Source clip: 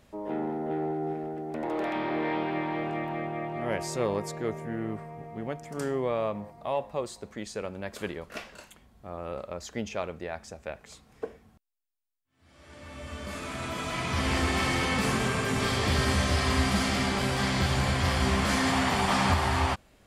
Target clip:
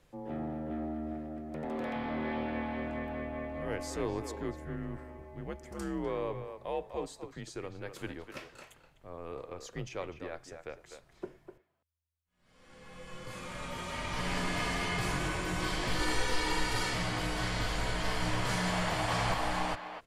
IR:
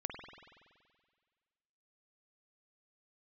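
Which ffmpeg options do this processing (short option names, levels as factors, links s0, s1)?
-filter_complex "[0:a]asettb=1/sr,asplit=3[s0][s1][s2];[s0]atrim=end=15.994[s3];[s1]atrim=start=15.99:end=16.94,asetpts=PTS-STARTPTS,afade=t=in:d=0.004:c=qsin,afade=t=out:st=0.946:d=0.004:c=qsin,aecho=1:1:2.1:0.71,atrim=end_sample=41895[s4];[s2]atrim=start=16.936[s5];[s3][s4]acrossfade=d=0.004:c1=hsin:c2=qsin[s6];[s6][s5]acrossfade=d=0.004:c1=qsin:c2=hsin,afreqshift=-82,asplit=2[s7][s8];[s8]adelay=250,highpass=300,lowpass=3400,asoftclip=type=hard:threshold=0.1,volume=0.398[s9];[s7][s9]amix=inputs=2:normalize=0,volume=0.501"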